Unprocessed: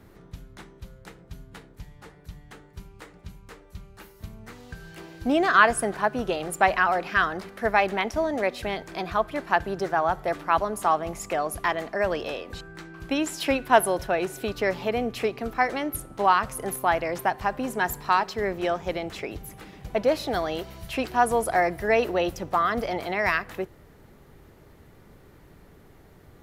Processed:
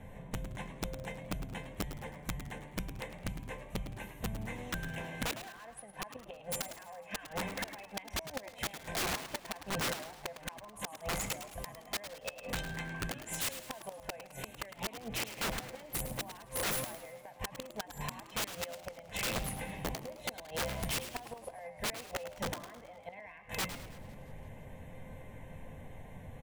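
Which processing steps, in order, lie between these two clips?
low-pass 10 kHz; peaking EQ 250 Hz +5 dB 2.7 oct; hum notches 60/120/180 Hz; peak limiter -15 dBFS, peak gain reduction 13 dB; static phaser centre 1.3 kHz, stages 6; feedback comb 520 Hz, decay 0.24 s, harmonics all, mix 80%; inverted gate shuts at -33 dBFS, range -27 dB; integer overflow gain 44 dB; frequency-shifting echo 106 ms, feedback 39%, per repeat +89 Hz, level -11 dB; modulated delay 168 ms, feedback 56%, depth 202 cents, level -20.5 dB; trim +15.5 dB

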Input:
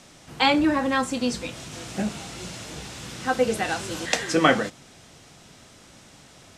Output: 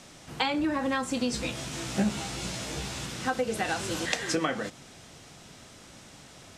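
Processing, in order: compression 16:1, threshold -24 dBFS, peak gain reduction 13 dB; 1.31–3.06 s: doubling 15 ms -2.5 dB

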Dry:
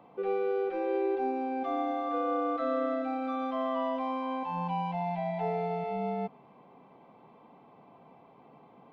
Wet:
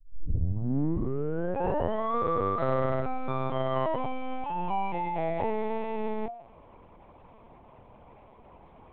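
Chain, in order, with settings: tape start-up on the opening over 2.19 s; de-hum 348.4 Hz, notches 5; LPC vocoder at 8 kHz pitch kept; trim +3.5 dB

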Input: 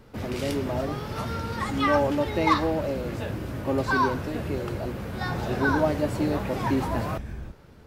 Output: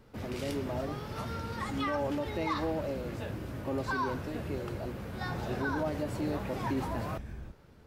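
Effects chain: peak limiter -17 dBFS, peak gain reduction 6.5 dB; trim -6.5 dB

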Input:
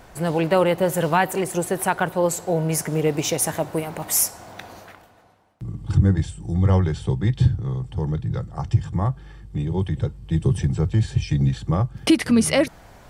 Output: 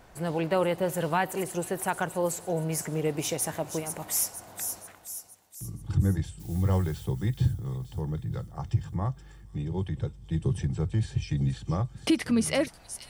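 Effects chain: 6.39–7.04 s: added noise blue -45 dBFS; feedback echo behind a high-pass 474 ms, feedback 53%, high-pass 5.3 kHz, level -5.5 dB; trim -7.5 dB

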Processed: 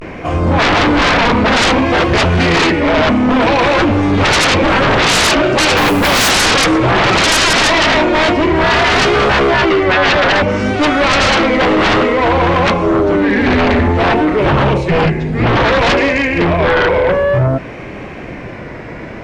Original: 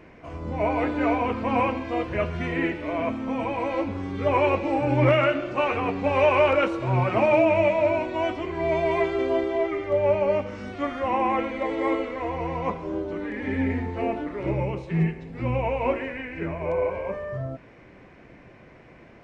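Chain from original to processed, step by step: 5.77–6.32 s: modulation noise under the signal 23 dB; vibrato 0.57 Hz 87 cents; sine folder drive 18 dB, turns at -8 dBFS

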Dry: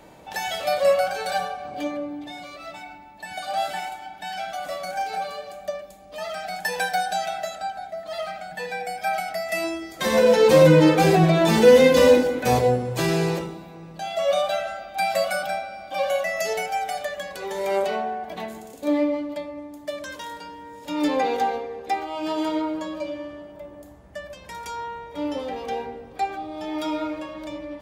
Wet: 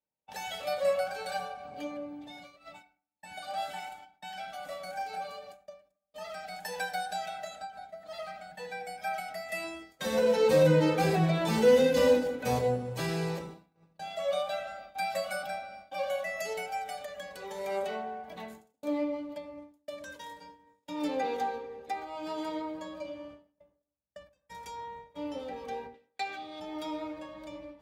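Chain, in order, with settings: 25.94–26.60 s: frequency weighting D; gate -38 dBFS, range -39 dB; comb of notches 350 Hz; on a send at -20.5 dB: reverberation RT60 0.40 s, pre-delay 27 ms; on the sum: endings held to a fixed fall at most 150 dB/s; trim -8.5 dB

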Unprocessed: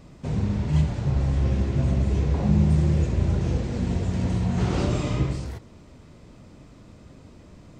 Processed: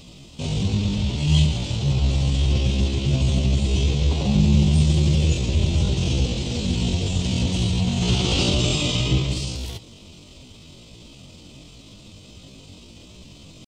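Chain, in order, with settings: resonant high shelf 2.3 kHz +10 dB, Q 3; tempo 0.57×; trim +2.5 dB

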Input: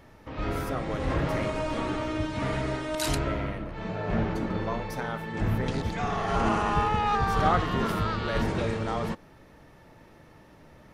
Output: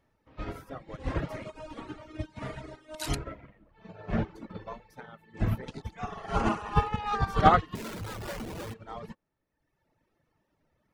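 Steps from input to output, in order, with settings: 7.75–8.74 s: Schmitt trigger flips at -33 dBFS; reverb removal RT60 1.4 s; upward expansion 2.5:1, over -38 dBFS; trim +7.5 dB

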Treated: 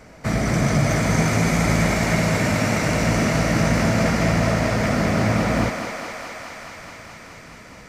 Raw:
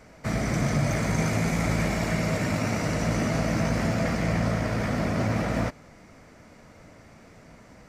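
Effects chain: thinning echo 211 ms, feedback 84%, high-pass 370 Hz, level -6 dB; trim +5.5 dB

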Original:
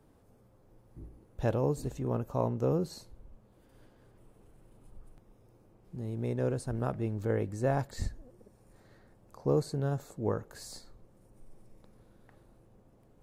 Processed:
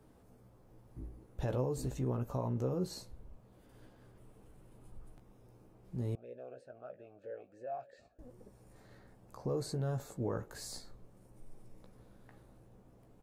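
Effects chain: peak limiter -27.5 dBFS, peak gain reduction 11.5 dB; doubling 16 ms -7 dB; 6.15–8.19 s: talking filter a-e 3.1 Hz

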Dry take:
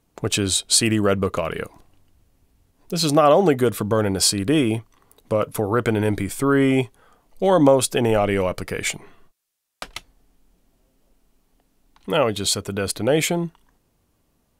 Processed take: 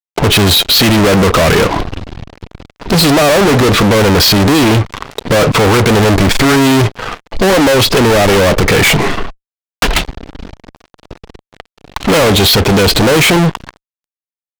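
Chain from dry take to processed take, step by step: in parallel at -2.5 dB: compression 6:1, threshold -29 dBFS, peak gain reduction 17.5 dB; on the sum: low-pass 4.4 kHz 24 dB/octave; level rider gain up to 3 dB; fuzz box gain 41 dB, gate -48 dBFS; trim +5.5 dB

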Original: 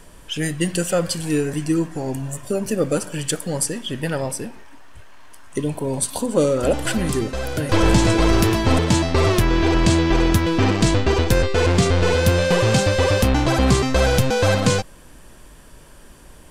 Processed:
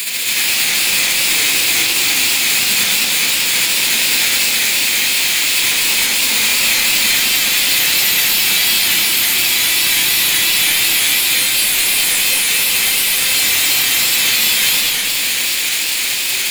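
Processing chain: formants flattened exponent 0.1; high-pass 250 Hz 12 dB/octave; resonant high shelf 1.9 kHz +12 dB, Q 1.5; compression 6:1, threshold -23 dBFS, peak gain reduction 23 dB; waveshaping leveller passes 3; saturation -16 dBFS, distortion -10 dB; reverberation RT60 0.55 s, pre-delay 70 ms, DRR -2 dB; modulated delay 208 ms, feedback 71%, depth 212 cents, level -3 dB

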